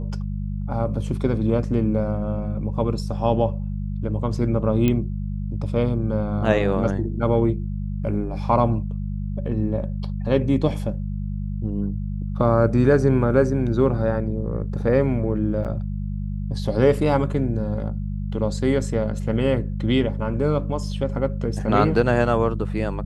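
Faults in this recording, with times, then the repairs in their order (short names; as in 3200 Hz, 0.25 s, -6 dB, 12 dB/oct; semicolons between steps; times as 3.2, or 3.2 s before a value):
hum 50 Hz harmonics 4 -27 dBFS
4.88 pop -9 dBFS
15.64–15.65 gap 7.9 ms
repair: de-click; de-hum 50 Hz, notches 4; interpolate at 15.64, 7.9 ms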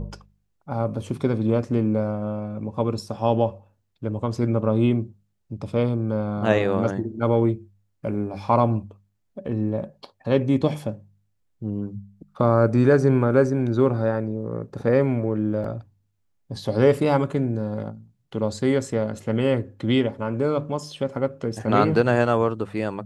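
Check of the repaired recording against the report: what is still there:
none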